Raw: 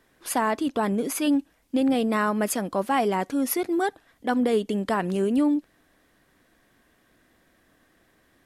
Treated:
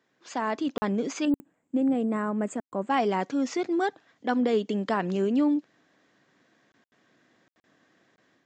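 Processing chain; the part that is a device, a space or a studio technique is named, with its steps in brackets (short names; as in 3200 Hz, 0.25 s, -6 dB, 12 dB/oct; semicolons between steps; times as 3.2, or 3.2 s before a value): call with lost packets (HPF 120 Hz 24 dB/oct; downsampling 16000 Hz; AGC gain up to 6.5 dB; packet loss packets of 20 ms bursts); 1.25–2.9 EQ curve 270 Hz 0 dB, 2100 Hz -9 dB, 5700 Hz -25 dB, 8100 Hz +7 dB; gain -8 dB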